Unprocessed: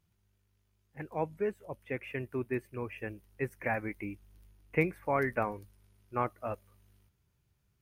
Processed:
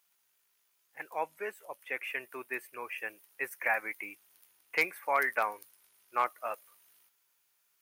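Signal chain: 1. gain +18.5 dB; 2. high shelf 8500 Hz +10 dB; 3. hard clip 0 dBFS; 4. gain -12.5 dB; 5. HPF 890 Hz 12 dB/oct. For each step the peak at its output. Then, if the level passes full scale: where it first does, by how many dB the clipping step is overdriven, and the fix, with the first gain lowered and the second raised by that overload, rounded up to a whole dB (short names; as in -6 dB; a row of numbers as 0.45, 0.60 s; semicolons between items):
+4.0, +4.5, 0.0, -12.5, -14.5 dBFS; step 1, 4.5 dB; step 1 +13.5 dB, step 4 -7.5 dB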